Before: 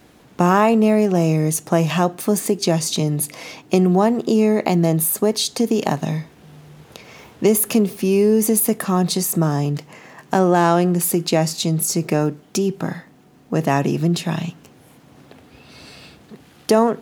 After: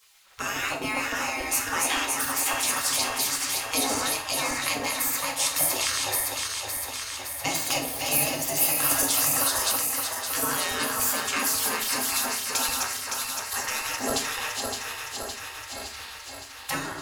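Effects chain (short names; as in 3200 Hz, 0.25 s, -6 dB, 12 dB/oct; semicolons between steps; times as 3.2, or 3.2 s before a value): regenerating reverse delay 0.282 s, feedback 82%, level -5.5 dB; spectral gate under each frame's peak -20 dB weak; on a send at -2 dB: reverb RT60 0.50 s, pre-delay 4 ms; 8.91–9.72 on the sum: three-band squash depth 100%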